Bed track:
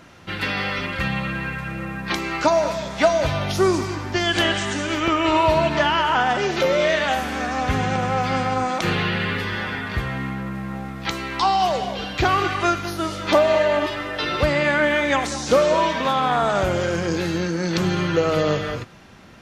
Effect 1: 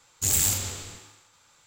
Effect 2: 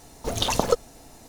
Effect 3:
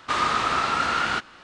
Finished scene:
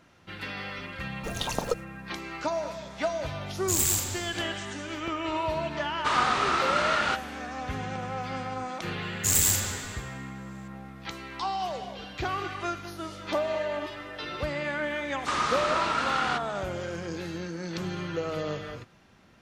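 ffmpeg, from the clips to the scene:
ffmpeg -i bed.wav -i cue0.wav -i cue1.wav -i cue2.wav -filter_complex "[1:a]asplit=2[link_01][link_02];[3:a]asplit=2[link_03][link_04];[0:a]volume=-12dB[link_05];[2:a]agate=range=-33dB:threshold=-38dB:ratio=3:release=100:detection=peak,atrim=end=1.28,asetpts=PTS-STARTPTS,volume=-7.5dB,afade=type=in:duration=0.004:curve=hsin,afade=type=out:start_time=1.276:duration=0.004:curve=hsin,adelay=990[link_06];[link_01]atrim=end=1.66,asetpts=PTS-STARTPTS,volume=-2.5dB,afade=type=in:duration=0.004:curve=hsin,afade=type=out:start_time=1.656:duration=0.004:curve=hsin,adelay=3460[link_07];[link_03]atrim=end=1.43,asetpts=PTS-STARTPTS,volume=-2.5dB,afade=type=in:duration=0.004:curve=hsin,afade=type=out:start_time=1.426:duration=0.004:curve=hsin,adelay=5960[link_08];[link_02]atrim=end=1.66,asetpts=PTS-STARTPTS,afade=type=in:duration=0.004:curve=hsin,afade=type=out:start_time=1.656:duration=0.004:curve=hsin,adelay=9020[link_09];[link_04]atrim=end=1.43,asetpts=PTS-STARTPTS,volume=-4.5dB,afade=type=in:duration=0.004:curve=hsin,afade=type=out:start_time=1.426:duration=0.004:curve=hsin,adelay=15180[link_10];[link_05][link_06][link_07][link_08][link_09][link_10]amix=inputs=6:normalize=0" out.wav

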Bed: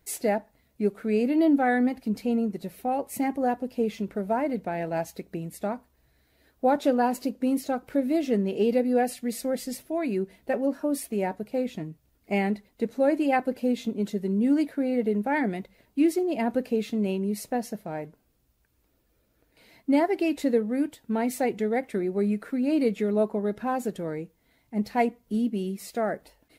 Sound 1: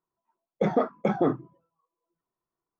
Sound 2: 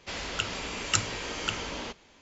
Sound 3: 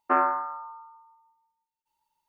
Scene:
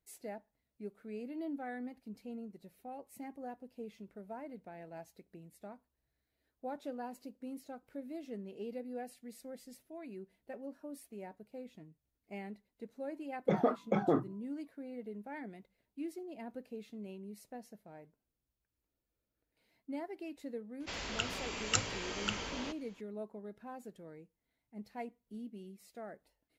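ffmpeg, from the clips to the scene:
ffmpeg -i bed.wav -i cue0.wav -i cue1.wav -filter_complex "[0:a]volume=-19.5dB[link_01];[1:a]atrim=end=2.79,asetpts=PTS-STARTPTS,volume=-6dB,afade=type=in:duration=0.004:curve=hsin,afade=type=out:start_time=2.786:duration=0.004:curve=hsin,adelay=12870[link_02];[2:a]atrim=end=2.21,asetpts=PTS-STARTPTS,volume=-5.5dB,afade=type=in:duration=0.004:curve=hsin,afade=type=out:start_time=2.206:duration=0.004:curve=hsin,adelay=20800[link_03];[link_01][link_02][link_03]amix=inputs=3:normalize=0" out.wav

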